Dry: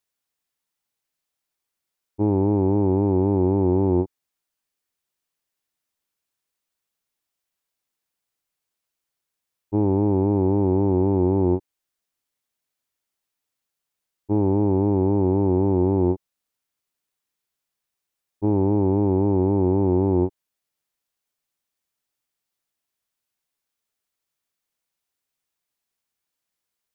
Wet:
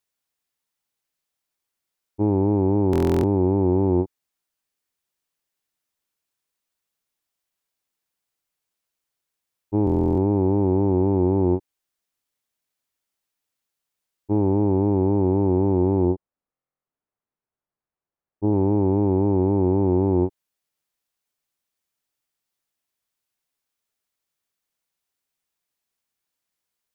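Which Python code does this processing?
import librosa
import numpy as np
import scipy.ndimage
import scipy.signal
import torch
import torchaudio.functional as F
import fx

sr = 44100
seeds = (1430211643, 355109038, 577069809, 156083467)

y = fx.lowpass(x, sr, hz=1200.0, slope=12, at=(16.05, 18.53))
y = fx.buffer_glitch(y, sr, at_s=(2.91, 9.85, 16.51), block=1024, repeats=13)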